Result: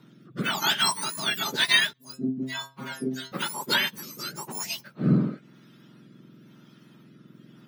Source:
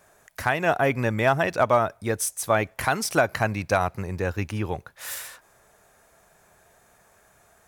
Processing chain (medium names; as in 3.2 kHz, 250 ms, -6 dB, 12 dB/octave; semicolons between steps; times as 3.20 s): spectrum inverted on a logarithmic axis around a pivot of 1.5 kHz; 1.93–3.32 s: inharmonic resonator 130 Hz, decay 0.31 s, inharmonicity 0.002; rotary cabinet horn 1 Hz; trim +4 dB